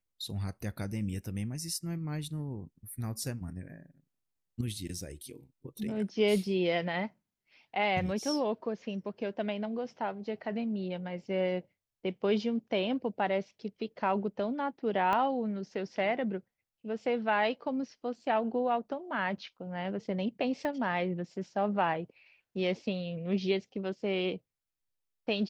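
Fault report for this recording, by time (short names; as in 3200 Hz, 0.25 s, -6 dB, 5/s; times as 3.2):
15.13 pop -19 dBFS
20.65 pop -22 dBFS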